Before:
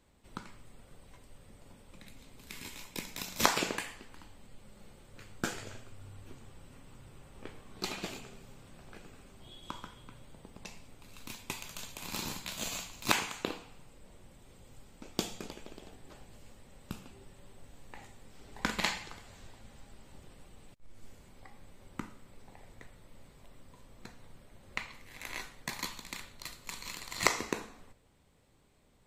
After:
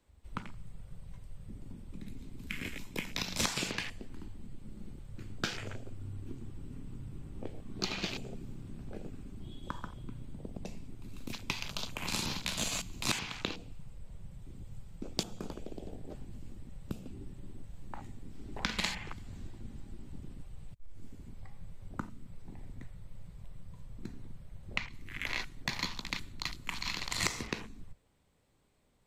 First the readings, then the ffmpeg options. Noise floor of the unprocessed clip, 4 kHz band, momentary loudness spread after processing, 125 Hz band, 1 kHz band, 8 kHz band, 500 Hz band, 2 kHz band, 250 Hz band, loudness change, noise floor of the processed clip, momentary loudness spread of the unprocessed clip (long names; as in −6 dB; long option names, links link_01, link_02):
−60 dBFS, +2.0 dB, 18 LU, +6.5 dB, −4.5 dB, −0.5 dB, −3.0 dB, −0.5 dB, +1.5 dB, −2.0 dB, −55 dBFS, 25 LU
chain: -filter_complex "[0:a]afwtdn=0.00447,acrossover=split=190|2200[link_01][link_02][link_03];[link_01]acompressor=threshold=-50dB:ratio=4[link_04];[link_02]acompressor=threshold=-53dB:ratio=4[link_05];[link_03]acompressor=threshold=-46dB:ratio=4[link_06];[link_04][link_05][link_06]amix=inputs=3:normalize=0,volume=11.5dB"